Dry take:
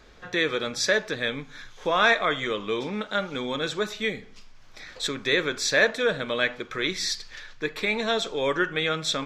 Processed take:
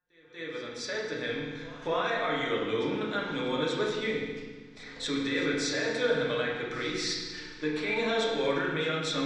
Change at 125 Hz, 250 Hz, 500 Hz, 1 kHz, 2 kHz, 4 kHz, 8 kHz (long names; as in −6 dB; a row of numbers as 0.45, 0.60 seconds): −1.0, −0.5, −3.0, −5.0, −7.5, −6.0, −7.0 decibels